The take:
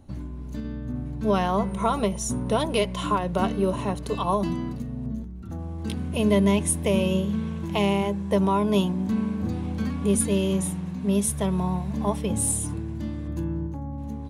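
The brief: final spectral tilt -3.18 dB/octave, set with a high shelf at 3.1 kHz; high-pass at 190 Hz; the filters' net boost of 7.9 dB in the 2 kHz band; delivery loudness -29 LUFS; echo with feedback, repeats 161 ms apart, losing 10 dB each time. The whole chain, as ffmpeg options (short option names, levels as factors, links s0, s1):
-af "highpass=190,equalizer=f=2000:t=o:g=7,highshelf=f=3100:g=7.5,aecho=1:1:161|322|483|644:0.316|0.101|0.0324|0.0104,volume=0.531"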